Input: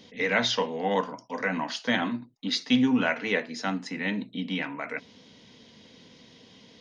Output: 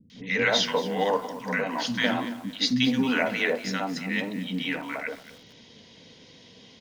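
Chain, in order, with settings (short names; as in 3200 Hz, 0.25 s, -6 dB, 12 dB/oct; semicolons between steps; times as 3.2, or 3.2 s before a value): three bands offset in time lows, highs, mids 0.1/0.16 s, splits 250/1200 Hz; lo-fi delay 0.227 s, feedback 35%, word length 7-bit, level -14 dB; gain +3 dB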